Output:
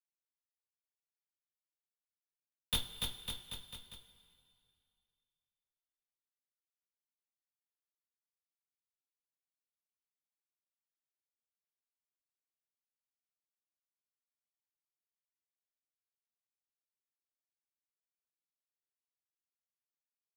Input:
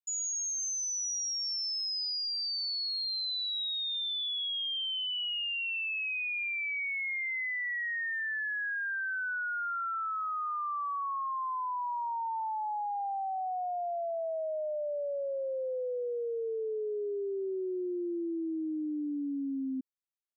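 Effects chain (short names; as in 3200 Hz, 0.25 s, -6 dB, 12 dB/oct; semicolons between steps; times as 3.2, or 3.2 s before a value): 2.12–2.76 sine-wave speech; chopper 2.2 Hz; Schmitt trigger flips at -28.5 dBFS; bouncing-ball echo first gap 0.29 s, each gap 0.9×, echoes 5; two-slope reverb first 0.21 s, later 2.5 s, from -18 dB, DRR 2 dB; gain +7 dB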